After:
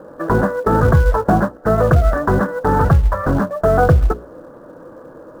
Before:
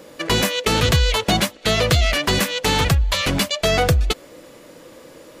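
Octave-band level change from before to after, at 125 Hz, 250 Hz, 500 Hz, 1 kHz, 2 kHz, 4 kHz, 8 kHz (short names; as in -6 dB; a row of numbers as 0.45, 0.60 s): +5.0 dB, +5.5 dB, +5.5 dB, +6.0 dB, -2.5 dB, under -20 dB, under -15 dB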